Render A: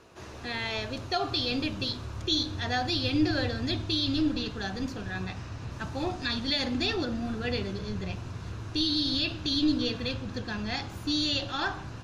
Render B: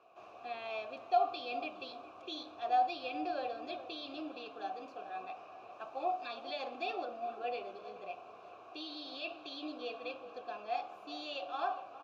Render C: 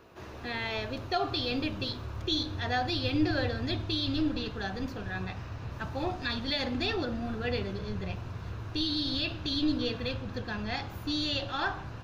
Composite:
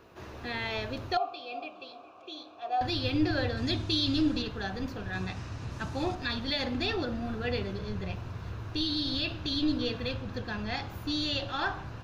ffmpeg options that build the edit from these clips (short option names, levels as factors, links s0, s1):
-filter_complex "[0:a]asplit=2[s0][s1];[2:a]asplit=4[s2][s3][s4][s5];[s2]atrim=end=1.172[s6];[1:a]atrim=start=1.168:end=2.812[s7];[s3]atrim=start=2.808:end=3.572[s8];[s0]atrim=start=3.568:end=4.422[s9];[s4]atrim=start=4.418:end=5.132[s10];[s1]atrim=start=5.128:end=6.152[s11];[s5]atrim=start=6.148[s12];[s6][s7]acrossfade=d=0.004:c1=hsin:c2=hsin[s13];[s13][s8]acrossfade=d=0.004:c1=hsin:c2=hsin[s14];[s14][s9]acrossfade=d=0.004:c1=hsin:c2=hsin[s15];[s15][s10]acrossfade=d=0.004:c1=hsin:c2=hsin[s16];[s16][s11]acrossfade=d=0.004:c1=hsin:c2=hsin[s17];[s17][s12]acrossfade=d=0.004:c1=hsin:c2=hsin"